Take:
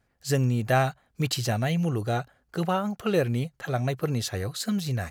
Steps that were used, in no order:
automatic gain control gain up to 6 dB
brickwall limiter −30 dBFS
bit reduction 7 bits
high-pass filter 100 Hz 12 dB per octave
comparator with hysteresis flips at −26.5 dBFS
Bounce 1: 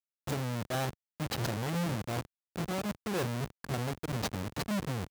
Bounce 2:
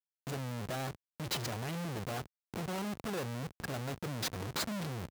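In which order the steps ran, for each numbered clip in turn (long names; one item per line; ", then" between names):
comparator with hysteresis, then automatic gain control, then brickwall limiter, then bit reduction, then high-pass filter
automatic gain control, then comparator with hysteresis, then bit reduction, then high-pass filter, then brickwall limiter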